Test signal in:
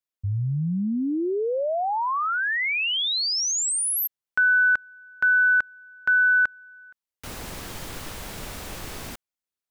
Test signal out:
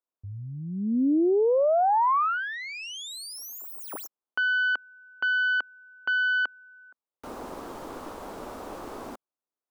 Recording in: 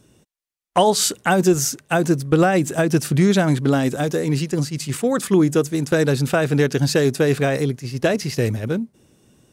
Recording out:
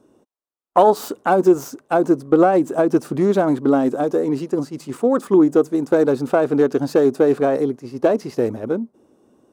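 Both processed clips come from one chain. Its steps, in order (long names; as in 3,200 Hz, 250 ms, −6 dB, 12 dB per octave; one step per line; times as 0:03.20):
phase distortion by the signal itself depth 0.076 ms
flat-topped bell 550 Hz +15.5 dB 2.9 octaves
level −12 dB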